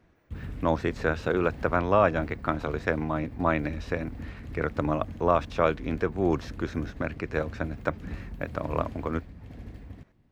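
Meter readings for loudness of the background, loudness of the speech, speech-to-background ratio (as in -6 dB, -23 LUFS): -42.0 LUFS, -29.0 LUFS, 13.0 dB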